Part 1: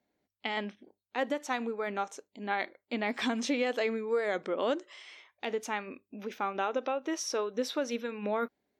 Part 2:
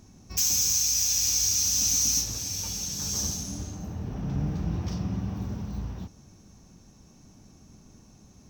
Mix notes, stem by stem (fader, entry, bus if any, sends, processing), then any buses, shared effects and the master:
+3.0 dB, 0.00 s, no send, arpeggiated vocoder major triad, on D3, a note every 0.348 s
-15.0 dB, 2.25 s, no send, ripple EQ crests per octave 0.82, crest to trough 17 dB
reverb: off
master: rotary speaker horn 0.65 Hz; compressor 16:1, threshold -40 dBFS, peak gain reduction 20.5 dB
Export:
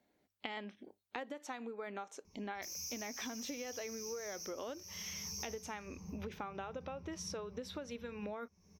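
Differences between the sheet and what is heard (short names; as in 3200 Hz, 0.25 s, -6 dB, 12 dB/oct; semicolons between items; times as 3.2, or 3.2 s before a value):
stem 1: missing arpeggiated vocoder major triad, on D3, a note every 0.348 s; master: missing rotary speaker horn 0.65 Hz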